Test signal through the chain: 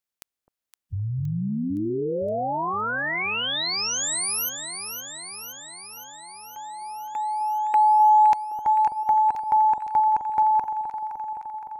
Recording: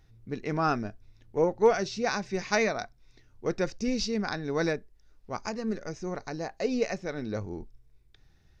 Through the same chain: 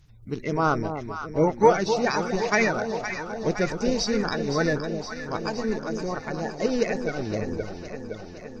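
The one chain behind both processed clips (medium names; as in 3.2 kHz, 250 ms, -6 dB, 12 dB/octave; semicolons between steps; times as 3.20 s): coarse spectral quantiser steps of 30 dB; echo whose repeats swap between lows and highs 258 ms, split 910 Hz, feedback 81%, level -7 dB; trim +4.5 dB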